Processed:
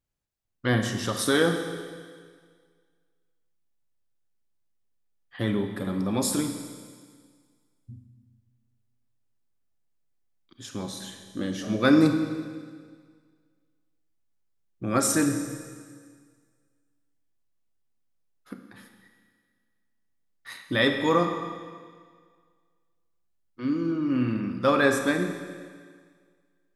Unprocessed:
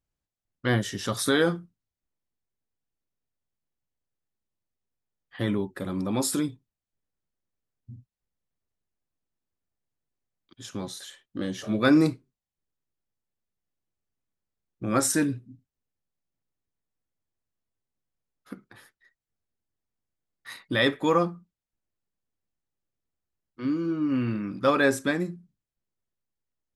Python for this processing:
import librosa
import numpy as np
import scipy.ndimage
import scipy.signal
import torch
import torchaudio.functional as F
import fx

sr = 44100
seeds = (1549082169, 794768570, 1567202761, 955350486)

y = fx.rev_schroeder(x, sr, rt60_s=1.8, comb_ms=28, drr_db=5.5)